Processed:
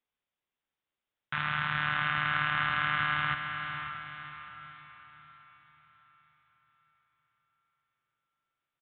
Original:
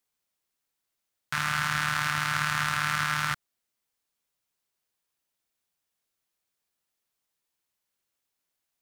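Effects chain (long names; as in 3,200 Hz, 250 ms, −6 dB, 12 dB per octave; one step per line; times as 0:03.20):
feedback delay with all-pass diffusion 551 ms, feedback 46%, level −7 dB
downsampling to 8,000 Hz
level −3 dB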